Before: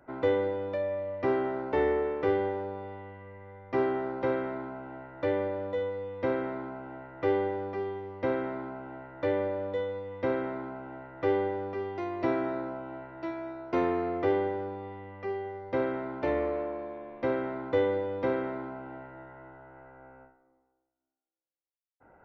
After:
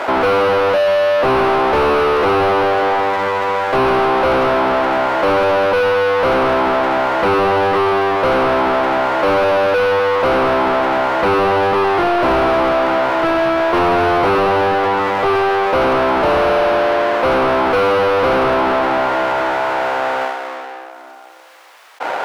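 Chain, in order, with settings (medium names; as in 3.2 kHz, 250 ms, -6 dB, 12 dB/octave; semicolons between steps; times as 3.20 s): square wave that keeps the level; high-pass 740 Hz 12 dB/octave; overdrive pedal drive 37 dB, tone 1.2 kHz, clips at -10 dBFS; treble shelf 2.8 kHz -10.5 dB; level flattener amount 50%; trim +6.5 dB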